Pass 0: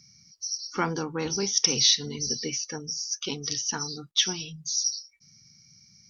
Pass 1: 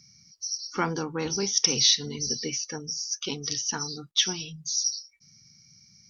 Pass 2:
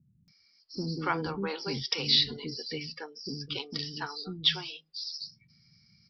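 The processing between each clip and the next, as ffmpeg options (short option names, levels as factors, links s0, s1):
-af anull
-filter_complex "[0:a]aresample=11025,aresample=44100,acrossover=split=380[s0][s1];[s1]adelay=280[s2];[s0][s2]amix=inputs=2:normalize=0,volume=0.891"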